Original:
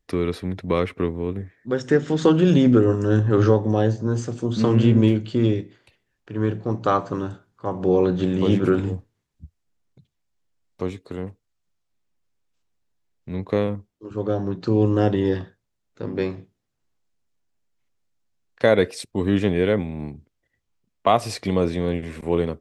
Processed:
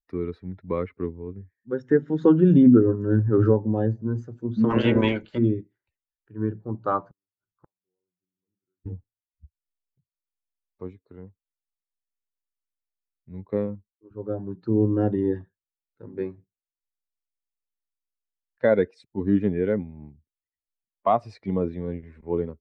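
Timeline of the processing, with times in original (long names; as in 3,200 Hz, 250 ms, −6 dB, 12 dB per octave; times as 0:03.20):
0:04.69–0:05.37: ceiling on every frequency bin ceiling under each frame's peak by 24 dB
0:07.08–0:08.86: gate with flip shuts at −25 dBFS, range −42 dB
whole clip: spectral dynamics exaggerated over time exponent 1.5; low-pass filter 1,900 Hz 12 dB per octave; dynamic equaliser 250 Hz, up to +6 dB, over −34 dBFS, Q 1.2; level −2 dB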